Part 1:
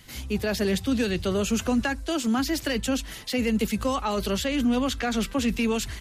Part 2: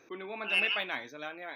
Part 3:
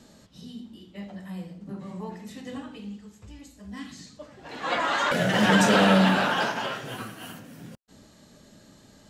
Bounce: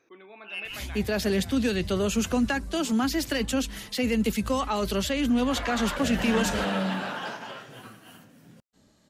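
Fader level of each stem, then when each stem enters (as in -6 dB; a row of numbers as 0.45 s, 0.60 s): -0.5 dB, -8.0 dB, -9.0 dB; 0.65 s, 0.00 s, 0.85 s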